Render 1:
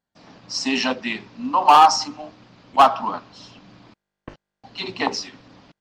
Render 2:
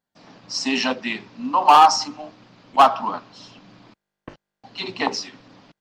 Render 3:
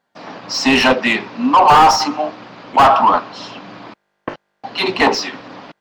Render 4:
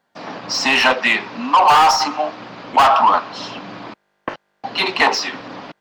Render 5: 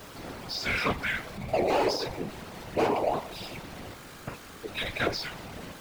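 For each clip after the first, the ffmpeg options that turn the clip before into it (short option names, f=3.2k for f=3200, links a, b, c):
-af "equalizer=f=61:w=1.8:g=-12.5"
-filter_complex "[0:a]asplit=2[a][b];[b]highpass=f=720:p=1,volume=20dB,asoftclip=type=tanh:threshold=-5dB[c];[a][c]amix=inputs=2:normalize=0,lowpass=f=1.3k:p=1,volume=-6dB,apsyclip=11.5dB,volume=-5dB"
-filter_complex "[0:a]acrossover=split=630|2400[a][b][c];[a]acompressor=threshold=-30dB:ratio=4[d];[b]acompressor=threshold=-12dB:ratio=4[e];[c]acompressor=threshold=-21dB:ratio=4[f];[d][e][f]amix=inputs=3:normalize=0,volume=2dB"
-af "aeval=exprs='val(0)+0.5*0.0531*sgn(val(0))':c=same,afreqshift=-390,afftfilt=real='hypot(re,im)*cos(2*PI*random(0))':imag='hypot(re,im)*sin(2*PI*random(1))':win_size=512:overlap=0.75,volume=-8.5dB"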